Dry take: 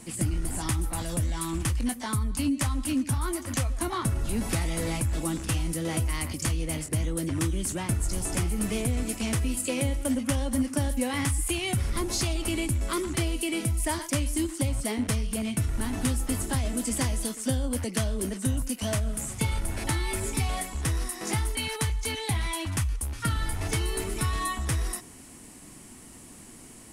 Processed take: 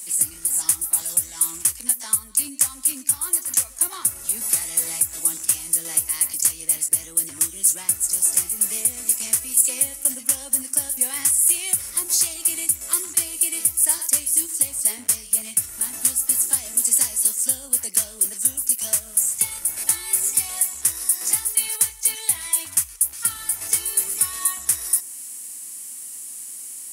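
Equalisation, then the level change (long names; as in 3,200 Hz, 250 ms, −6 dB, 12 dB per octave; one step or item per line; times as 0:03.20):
dynamic equaliser 3,500 Hz, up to −5 dB, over −51 dBFS, Q 1.2
spectral tilt +4.5 dB per octave
high-shelf EQ 7,400 Hz +11.5 dB
−5.5 dB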